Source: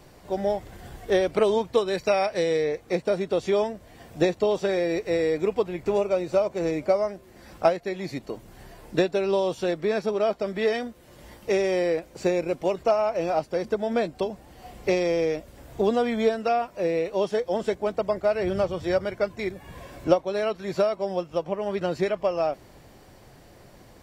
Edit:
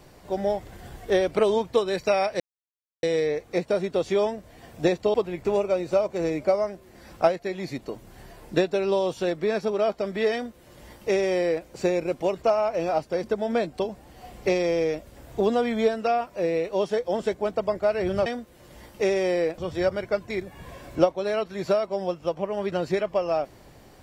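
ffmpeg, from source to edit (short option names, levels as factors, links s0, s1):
-filter_complex "[0:a]asplit=5[s0][s1][s2][s3][s4];[s0]atrim=end=2.4,asetpts=PTS-STARTPTS,afade=t=out:st=2.396:d=0.004:c=hsin,apad=pad_dur=0.63[s5];[s1]atrim=start=2.4:end=4.512,asetpts=PTS-STARTPTS,afade=t=in:d=0.004:c=hsin[s6];[s2]atrim=start=5.548:end=18.672[s7];[s3]atrim=start=10.738:end=12.062[s8];[s4]atrim=start=18.668[s9];[s5][s6]concat=n=2:v=0:a=1[s10];[s10][s7]acrossfade=d=0.004:c1=hsin:c2=hsin[s11];[s11][s8]acrossfade=d=0.004:c1=hsin:c2=hsin[s12];[s12][s9]acrossfade=d=0.004:c1=hsin:c2=hsin"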